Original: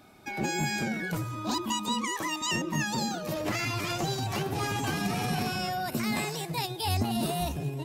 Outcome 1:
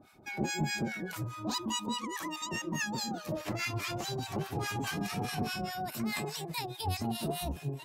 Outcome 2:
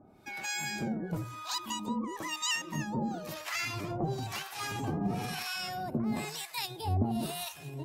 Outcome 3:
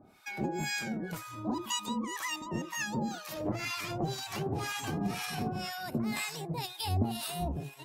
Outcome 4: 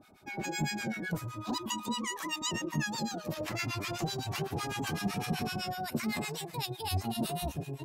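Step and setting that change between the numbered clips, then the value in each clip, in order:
harmonic tremolo, rate: 4.8 Hz, 1 Hz, 2 Hz, 7.9 Hz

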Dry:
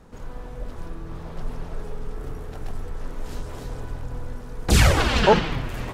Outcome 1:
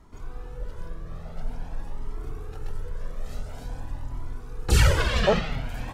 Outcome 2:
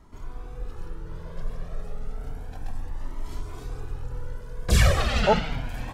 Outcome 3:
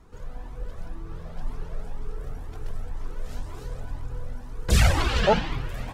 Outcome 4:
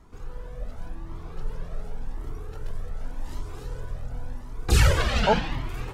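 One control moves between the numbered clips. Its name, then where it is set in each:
Shepard-style flanger, rate: 0.48 Hz, 0.31 Hz, 2 Hz, 0.89 Hz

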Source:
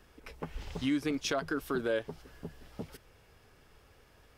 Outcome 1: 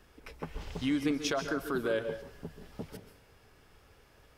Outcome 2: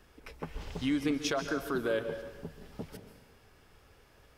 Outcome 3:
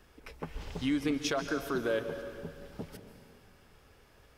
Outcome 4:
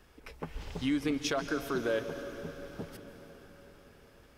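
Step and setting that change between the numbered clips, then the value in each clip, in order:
plate-style reverb, RT60: 0.51 s, 1.1 s, 2.3 s, 5.1 s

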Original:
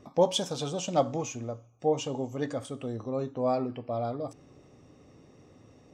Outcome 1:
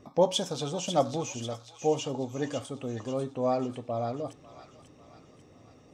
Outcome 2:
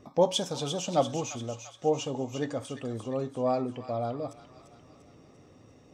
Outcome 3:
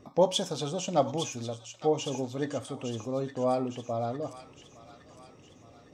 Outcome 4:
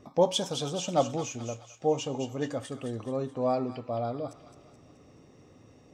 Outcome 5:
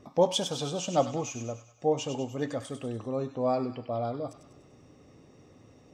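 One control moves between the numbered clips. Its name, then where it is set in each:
feedback echo behind a high-pass, time: 544 ms, 345 ms, 860 ms, 214 ms, 98 ms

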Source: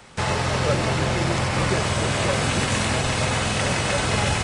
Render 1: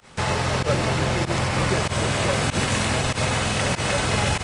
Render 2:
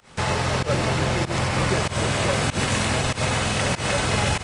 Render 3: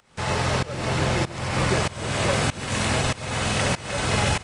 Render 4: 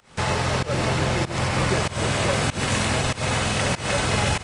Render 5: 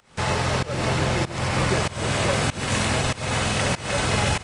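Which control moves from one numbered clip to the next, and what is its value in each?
volume shaper, release: 82 ms, 132 ms, 506 ms, 209 ms, 317 ms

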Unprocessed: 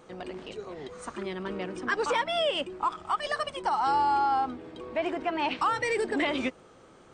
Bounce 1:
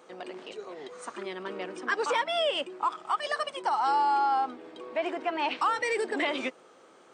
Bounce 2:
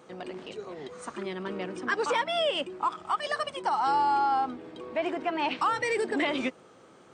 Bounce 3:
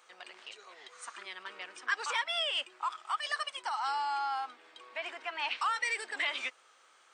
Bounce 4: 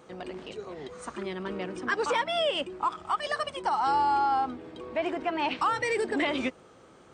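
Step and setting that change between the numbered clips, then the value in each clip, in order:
high-pass, cutoff frequency: 330 Hz, 120 Hz, 1.4 kHz, 44 Hz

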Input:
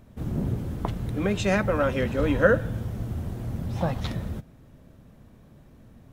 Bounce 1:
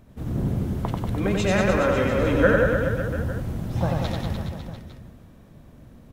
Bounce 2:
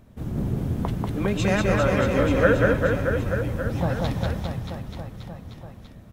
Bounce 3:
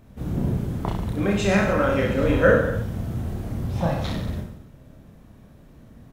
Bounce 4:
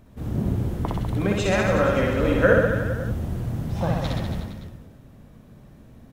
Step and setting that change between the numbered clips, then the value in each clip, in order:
reverse bouncing-ball echo, first gap: 90 ms, 190 ms, 30 ms, 60 ms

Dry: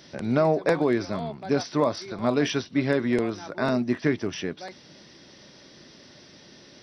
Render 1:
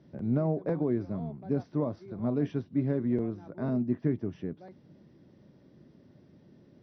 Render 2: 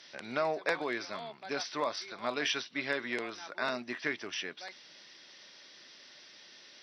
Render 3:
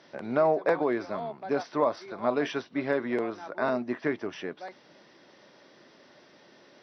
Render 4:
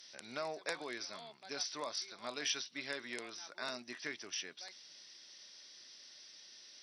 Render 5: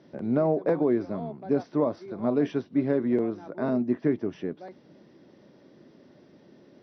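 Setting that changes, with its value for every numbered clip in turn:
band-pass filter, frequency: 120 Hz, 2.8 kHz, 890 Hz, 7.8 kHz, 310 Hz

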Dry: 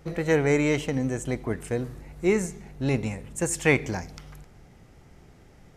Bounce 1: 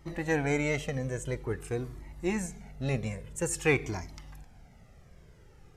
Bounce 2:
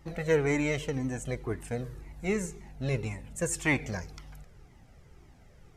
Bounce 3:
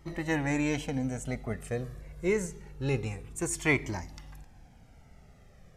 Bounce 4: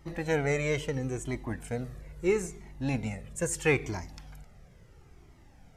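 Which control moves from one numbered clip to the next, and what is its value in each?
Shepard-style flanger, rate: 0.49 Hz, 1.9 Hz, 0.26 Hz, 0.75 Hz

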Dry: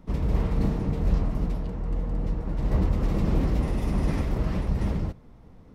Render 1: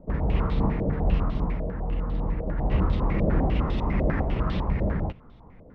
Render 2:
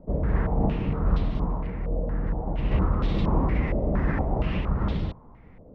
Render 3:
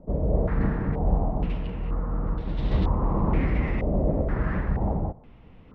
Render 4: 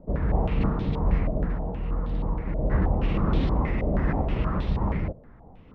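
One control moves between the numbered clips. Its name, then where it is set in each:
step-sequenced low-pass, rate: 10 Hz, 4.3 Hz, 2.1 Hz, 6.3 Hz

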